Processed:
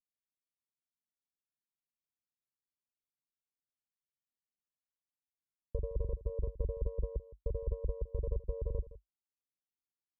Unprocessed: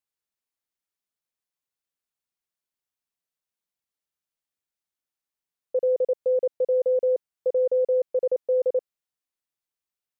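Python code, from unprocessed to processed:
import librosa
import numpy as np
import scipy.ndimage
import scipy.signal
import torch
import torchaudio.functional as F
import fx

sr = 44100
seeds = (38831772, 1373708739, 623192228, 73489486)

y = fx.lower_of_two(x, sr, delay_ms=0.52)
y = y * np.sin(2.0 * np.pi * 49.0 * np.arange(len(y)) / sr)
y = fx.ladder_lowpass(y, sr, hz=350.0, resonance_pct=25)
y = y + 10.0 ** (-11.5 / 20.0) * np.pad(y, (int(164 * sr / 1000.0), 0))[:len(y)]
y = fx.upward_expand(y, sr, threshold_db=-50.0, expansion=1.5)
y = y * librosa.db_to_amplitude(7.5)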